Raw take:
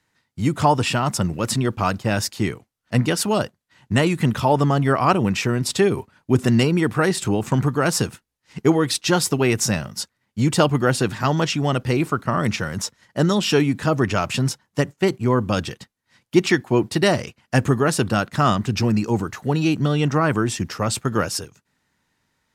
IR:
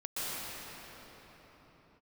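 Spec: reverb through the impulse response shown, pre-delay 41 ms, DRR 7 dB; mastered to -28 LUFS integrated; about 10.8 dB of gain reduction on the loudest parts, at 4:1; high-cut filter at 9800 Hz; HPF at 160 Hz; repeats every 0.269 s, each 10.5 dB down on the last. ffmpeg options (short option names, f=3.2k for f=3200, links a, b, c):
-filter_complex "[0:a]highpass=160,lowpass=9.8k,acompressor=threshold=-25dB:ratio=4,aecho=1:1:269|538|807:0.299|0.0896|0.0269,asplit=2[a][b];[1:a]atrim=start_sample=2205,adelay=41[c];[b][c]afir=irnorm=-1:irlink=0,volume=-13.5dB[d];[a][d]amix=inputs=2:normalize=0,volume=0.5dB"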